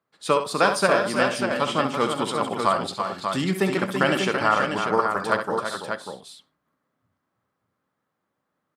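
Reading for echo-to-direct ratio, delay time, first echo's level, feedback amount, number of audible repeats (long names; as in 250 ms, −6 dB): −2.0 dB, 65 ms, −8.5 dB, repeats not evenly spaced, 4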